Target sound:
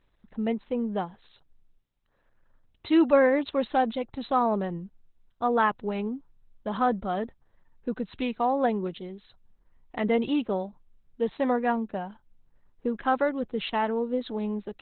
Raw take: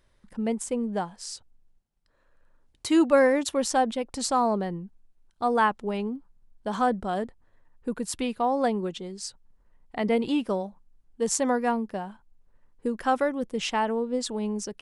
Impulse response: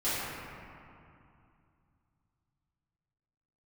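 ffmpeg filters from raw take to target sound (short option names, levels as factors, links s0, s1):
-ar 48000 -c:a libopus -b:a 8k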